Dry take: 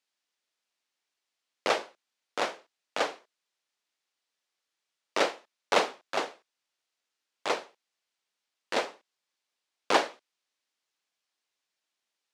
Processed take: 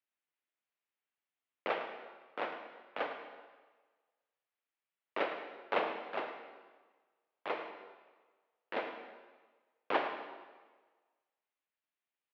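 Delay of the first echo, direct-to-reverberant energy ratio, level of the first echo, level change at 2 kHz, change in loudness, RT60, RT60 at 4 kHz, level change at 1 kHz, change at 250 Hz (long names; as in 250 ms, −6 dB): 106 ms, 5.0 dB, −12.0 dB, −7.0 dB, −8.5 dB, 1.4 s, 1.2 s, −7.0 dB, −7.0 dB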